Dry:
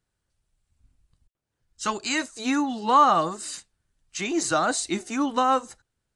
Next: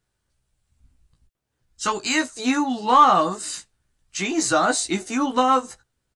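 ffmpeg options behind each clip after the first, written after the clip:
ffmpeg -i in.wav -filter_complex "[0:a]asoftclip=type=tanh:threshold=-10.5dB,asplit=2[link_01][link_02];[link_02]adelay=16,volume=-5dB[link_03];[link_01][link_03]amix=inputs=2:normalize=0,volume=3dB" out.wav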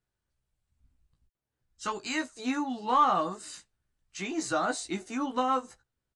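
ffmpeg -i in.wav -af "highshelf=frequency=4500:gain=-6,volume=-9dB" out.wav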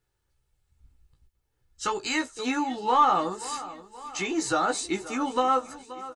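ffmpeg -i in.wav -filter_complex "[0:a]aecho=1:1:2.3:0.43,aecho=1:1:527|1054|1581|2108:0.112|0.0572|0.0292|0.0149,asplit=2[link_01][link_02];[link_02]acompressor=threshold=-35dB:ratio=6,volume=-2.5dB[link_03];[link_01][link_03]amix=inputs=2:normalize=0,volume=1.5dB" out.wav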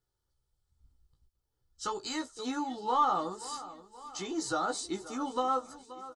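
ffmpeg -i in.wav -af "superequalizer=11b=0.501:12b=0.316:14b=1.41,volume=-6.5dB" out.wav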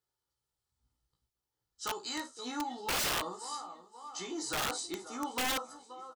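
ffmpeg -i in.wav -af "highpass=frequency=330:poles=1,aecho=1:1:17|53:0.501|0.266,aeval=exprs='(mod(17.8*val(0)+1,2)-1)/17.8':channel_layout=same,volume=-2dB" out.wav

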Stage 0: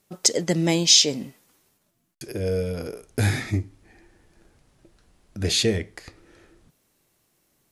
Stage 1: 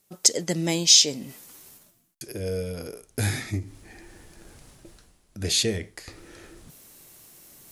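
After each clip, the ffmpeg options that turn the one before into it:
ffmpeg -i in.wav -af "highshelf=frequency=5100:gain=9,areverse,acompressor=mode=upward:threshold=-31dB:ratio=2.5,areverse,volume=-4.5dB" out.wav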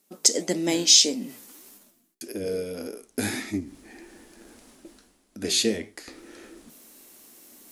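ffmpeg -i in.wav -af "lowshelf=frequency=180:width_type=q:width=3:gain=-9.5,flanger=delay=9.6:depth=9.8:regen=76:speed=1.7:shape=sinusoidal,volume=4dB" out.wav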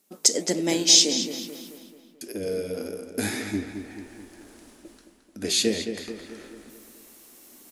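ffmpeg -i in.wav -filter_complex "[0:a]asplit=2[link_01][link_02];[link_02]adelay=218,lowpass=frequency=3900:poles=1,volume=-8dB,asplit=2[link_03][link_04];[link_04]adelay=218,lowpass=frequency=3900:poles=1,volume=0.53,asplit=2[link_05][link_06];[link_06]adelay=218,lowpass=frequency=3900:poles=1,volume=0.53,asplit=2[link_07][link_08];[link_08]adelay=218,lowpass=frequency=3900:poles=1,volume=0.53,asplit=2[link_09][link_10];[link_10]adelay=218,lowpass=frequency=3900:poles=1,volume=0.53,asplit=2[link_11][link_12];[link_12]adelay=218,lowpass=frequency=3900:poles=1,volume=0.53[link_13];[link_01][link_03][link_05][link_07][link_09][link_11][link_13]amix=inputs=7:normalize=0" out.wav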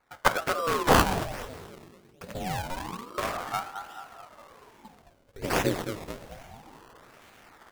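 ffmpeg -i in.wav -af "acrusher=samples=20:mix=1:aa=0.000001:lfo=1:lforange=20:lforate=1.2,aeval=exprs='val(0)*sin(2*PI*590*n/s+590*0.85/0.26*sin(2*PI*0.26*n/s))':channel_layout=same" out.wav

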